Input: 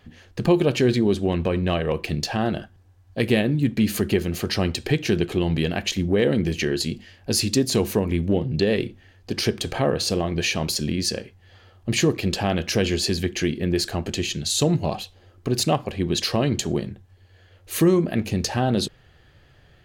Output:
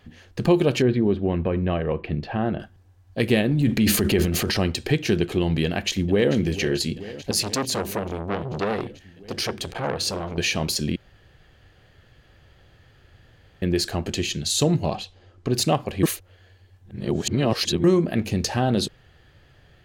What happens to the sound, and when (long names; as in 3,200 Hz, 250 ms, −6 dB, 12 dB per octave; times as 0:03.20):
0:00.82–0:02.60: high-frequency loss of the air 460 metres
0:03.51–0:04.57: transient designer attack −1 dB, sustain +10 dB
0:05.64–0:06.33: delay throw 440 ms, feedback 80%, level −15 dB
0:07.31–0:10.38: saturating transformer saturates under 1,400 Hz
0:10.96–0:13.62: fill with room tone
0:14.90–0:15.52: low-pass filter 7,200 Hz
0:16.03–0:17.84: reverse